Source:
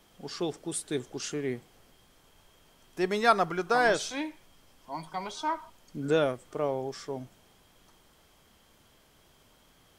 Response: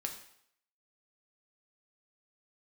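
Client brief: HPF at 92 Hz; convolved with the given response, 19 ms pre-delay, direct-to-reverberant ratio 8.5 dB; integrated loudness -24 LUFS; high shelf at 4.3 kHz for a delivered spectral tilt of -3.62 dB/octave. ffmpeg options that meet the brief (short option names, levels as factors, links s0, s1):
-filter_complex "[0:a]highpass=92,highshelf=f=4300:g=-8,asplit=2[s0][s1];[1:a]atrim=start_sample=2205,adelay=19[s2];[s1][s2]afir=irnorm=-1:irlink=0,volume=0.376[s3];[s0][s3]amix=inputs=2:normalize=0,volume=2.11"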